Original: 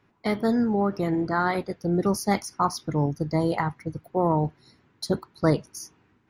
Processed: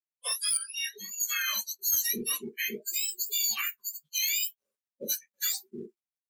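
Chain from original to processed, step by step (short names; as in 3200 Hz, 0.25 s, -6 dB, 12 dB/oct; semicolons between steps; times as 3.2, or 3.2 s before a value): spectrum mirrored in octaves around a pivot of 1500 Hz; 0.57–1.2 tone controls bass +12 dB, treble -14 dB; limiter -21 dBFS, peak gain reduction 6.5 dB; tilt +2.5 dB/oct; downsampling 32000 Hz; companded quantiser 4-bit; spectral noise reduction 29 dB; flange 1.7 Hz, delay 5.7 ms, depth 5.4 ms, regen -44%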